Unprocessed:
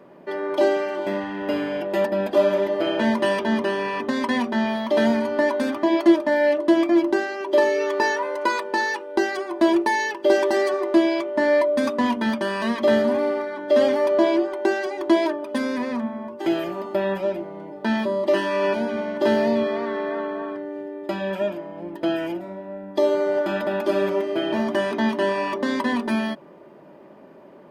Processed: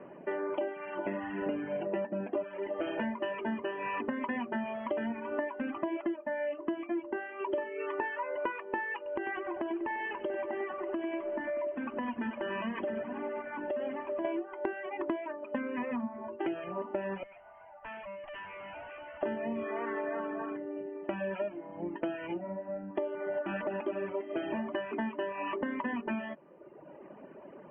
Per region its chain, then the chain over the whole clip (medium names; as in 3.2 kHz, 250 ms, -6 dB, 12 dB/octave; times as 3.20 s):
1.46–2.44 s: band-pass 120–3400 Hz + bass shelf 320 Hz +9 dB
8.96–14.25 s: compression 4:1, threshold -29 dBFS + bit-crushed delay 97 ms, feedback 80%, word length 8-bit, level -8 dB
17.23–19.23 s: Chebyshev band-pass 650–4100 Hz, order 4 + valve stage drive 40 dB, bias 0.4
whole clip: reverb removal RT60 1.2 s; Chebyshev low-pass 3 kHz, order 8; compression 10:1, threshold -31 dBFS